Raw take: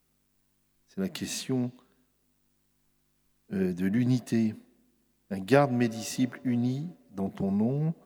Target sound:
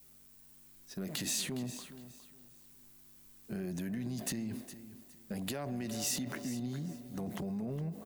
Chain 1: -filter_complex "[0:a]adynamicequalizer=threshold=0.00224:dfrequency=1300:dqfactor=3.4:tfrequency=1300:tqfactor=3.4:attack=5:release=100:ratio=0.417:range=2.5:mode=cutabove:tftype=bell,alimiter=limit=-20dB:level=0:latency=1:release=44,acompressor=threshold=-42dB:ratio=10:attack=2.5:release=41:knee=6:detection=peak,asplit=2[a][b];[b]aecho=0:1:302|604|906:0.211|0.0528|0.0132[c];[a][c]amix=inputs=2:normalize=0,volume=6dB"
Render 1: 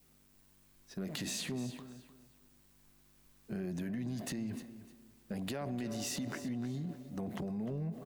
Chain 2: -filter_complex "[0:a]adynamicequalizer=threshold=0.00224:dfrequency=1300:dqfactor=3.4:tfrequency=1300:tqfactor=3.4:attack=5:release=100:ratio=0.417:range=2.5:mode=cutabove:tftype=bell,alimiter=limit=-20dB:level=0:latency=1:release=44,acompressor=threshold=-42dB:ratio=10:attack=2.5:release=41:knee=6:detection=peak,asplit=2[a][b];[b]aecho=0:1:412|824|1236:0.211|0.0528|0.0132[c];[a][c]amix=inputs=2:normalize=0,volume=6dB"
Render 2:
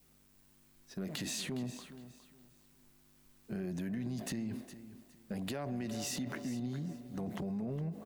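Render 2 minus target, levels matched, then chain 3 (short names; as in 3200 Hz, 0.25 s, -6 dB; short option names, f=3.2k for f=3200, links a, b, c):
8000 Hz band -4.5 dB
-filter_complex "[0:a]adynamicequalizer=threshold=0.00224:dfrequency=1300:dqfactor=3.4:tfrequency=1300:tqfactor=3.4:attack=5:release=100:ratio=0.417:range=2.5:mode=cutabove:tftype=bell,alimiter=limit=-20dB:level=0:latency=1:release=44,acompressor=threshold=-42dB:ratio=10:attack=2.5:release=41:knee=6:detection=peak,highshelf=f=6k:g=10,asplit=2[a][b];[b]aecho=0:1:412|824|1236:0.211|0.0528|0.0132[c];[a][c]amix=inputs=2:normalize=0,volume=6dB"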